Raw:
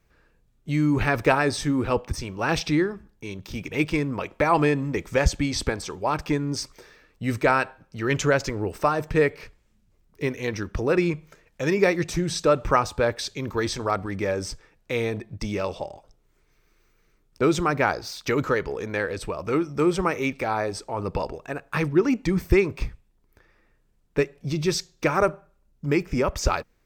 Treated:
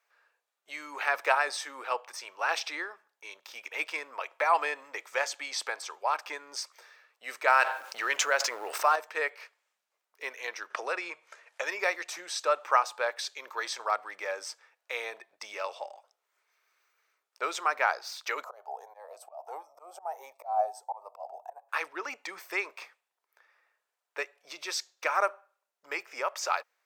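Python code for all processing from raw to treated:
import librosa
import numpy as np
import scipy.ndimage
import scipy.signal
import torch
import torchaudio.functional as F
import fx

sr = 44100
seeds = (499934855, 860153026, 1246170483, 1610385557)

y = fx.chain(x, sr, fx.law_mismatch(coded='A'),
    fx.low_shelf(hz=91.0, db=10.0),
    fx.env_flatten(amount_pct=70), at=(7.47, 8.96))
y = fx.chain(y, sr, fx.lowpass(hz=11000.0, slope=24),
    fx.band_squash(depth_pct=70), at=(10.7, 11.63))
y = fx.chain(y, sr, fx.curve_eq(hz=(120.0, 190.0, 490.0, 740.0, 1400.0, 2300.0, 4800.0, 14000.0), db=(0, -22, -4, 15, -14, -20, -14, 2)),
    fx.auto_swell(attack_ms=218.0),
    fx.notch_cascade(direction='rising', hz=1.5), at=(18.44, 21.69))
y = scipy.signal.sosfilt(scipy.signal.butter(4, 620.0, 'highpass', fs=sr, output='sos'), y)
y = fx.peak_eq(y, sr, hz=1300.0, db=3.0, octaves=1.9)
y = y * 10.0 ** (-5.0 / 20.0)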